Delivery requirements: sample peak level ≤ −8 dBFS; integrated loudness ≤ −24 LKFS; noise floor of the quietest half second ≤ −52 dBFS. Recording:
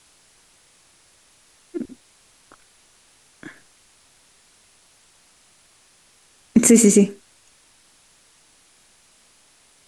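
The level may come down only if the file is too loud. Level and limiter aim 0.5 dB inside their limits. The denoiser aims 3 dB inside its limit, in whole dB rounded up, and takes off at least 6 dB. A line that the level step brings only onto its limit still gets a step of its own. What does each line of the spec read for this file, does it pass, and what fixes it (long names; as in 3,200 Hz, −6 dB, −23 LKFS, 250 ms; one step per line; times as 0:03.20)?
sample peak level −3.0 dBFS: out of spec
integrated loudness −16.5 LKFS: out of spec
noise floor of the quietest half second −56 dBFS: in spec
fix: level −8 dB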